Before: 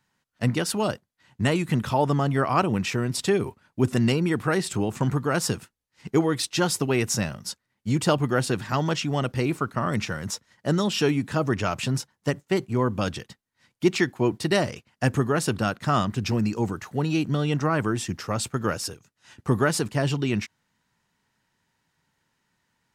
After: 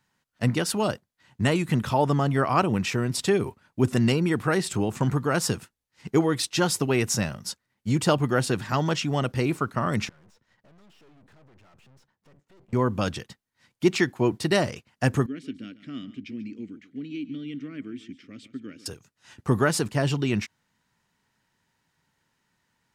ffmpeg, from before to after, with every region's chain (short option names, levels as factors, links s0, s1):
-filter_complex "[0:a]asettb=1/sr,asplit=3[s0][s1][s2];[s0]atrim=end=10.094[s3];[s1]atrim=start=10.09:end=12.73,asetpts=PTS-STARTPTS,afade=t=in:d=0.004:c=qsin,afade=t=out:st=2.636:d=0.004:c=qsin,acompressor=threshold=0.00794:ratio=3:attack=3.2:release=140:knee=1:detection=peak,aeval=exprs='(tanh(562*val(0)+0.7)-tanh(0.7))/562':c=same,lowpass=f=2600:p=1[s4];[s2]atrim=start=12.726[s5];[s3][s4]acrossfade=d=0.004:c1=hsin:c2=qsin[s6];[s6][s5]acrossfade=d=0.004:c1=qsin:c2=hsin,asettb=1/sr,asplit=3[s7][s8][s9];[s7]atrim=end=15.264[s10];[s8]atrim=start=15.26:end=18.86,asetpts=PTS-STARTPTS,afade=t=in:d=0.004:c=qsin,afade=t=out:st=3.596:d=0.004:c=qsin,asplit=3[s11][s12][s13];[s11]bandpass=f=270:t=q:w=8,volume=1[s14];[s12]bandpass=f=2290:t=q:w=8,volume=0.501[s15];[s13]bandpass=f=3010:t=q:w=8,volume=0.355[s16];[s14][s15][s16]amix=inputs=3:normalize=0,aecho=1:1:142:0.158,atrim=end_sample=158760[s17];[s9]atrim=start=18.856[s18];[s10][s17]acrossfade=d=0.004:c1=hsin:c2=qsin[s19];[s19][s18]acrossfade=d=0.004:c1=qsin:c2=hsin"